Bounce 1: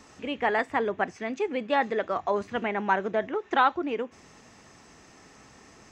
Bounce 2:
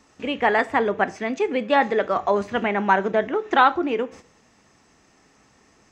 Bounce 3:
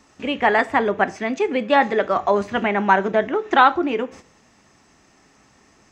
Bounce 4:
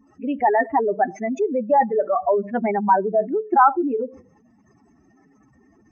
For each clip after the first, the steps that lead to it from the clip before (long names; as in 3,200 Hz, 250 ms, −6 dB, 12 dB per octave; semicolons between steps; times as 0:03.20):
noise gate −48 dBFS, range −11 dB; on a send at −15 dB: convolution reverb RT60 0.45 s, pre-delay 3 ms; on the sum: level +6 dB
notch filter 470 Hz, Q 12; level +2.5 dB
expanding power law on the bin magnitudes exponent 3; mains-hum notches 50/100/150/200 Hz